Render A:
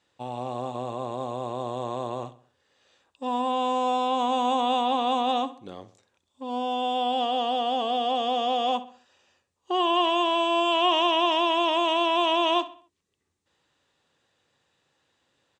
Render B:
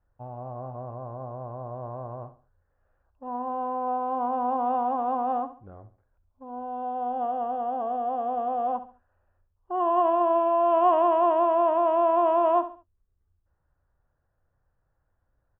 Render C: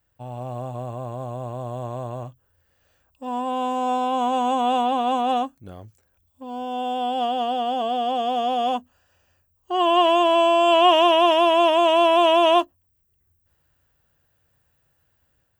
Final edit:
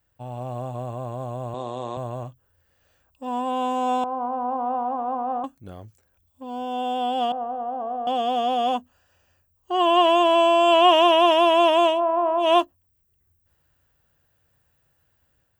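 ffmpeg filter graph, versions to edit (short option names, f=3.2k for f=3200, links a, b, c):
-filter_complex "[1:a]asplit=3[a][b][c];[2:a]asplit=5[d][e][f][g][h];[d]atrim=end=1.542[i];[0:a]atrim=start=1.538:end=1.972[j];[e]atrim=start=1.968:end=4.042[k];[a]atrim=start=4.038:end=5.442[l];[f]atrim=start=5.438:end=7.322[m];[b]atrim=start=7.318:end=8.072[n];[g]atrim=start=8.068:end=12.01[o];[c]atrim=start=11.85:end=12.53[p];[h]atrim=start=12.37[q];[i][j]acrossfade=d=0.004:c1=hsin:c2=hsin[r];[r][k]acrossfade=d=0.004:c1=hsin:c2=hsin[s];[s][l]acrossfade=d=0.004:c1=hsin:c2=hsin[t];[t][m]acrossfade=d=0.004:c1=hsin:c2=hsin[u];[u][n]acrossfade=d=0.004:c1=hsin:c2=hsin[v];[v][o]acrossfade=d=0.004:c1=hsin:c2=hsin[w];[w][p]acrossfade=d=0.16:c1=tri:c2=tri[x];[x][q]acrossfade=d=0.16:c1=tri:c2=tri"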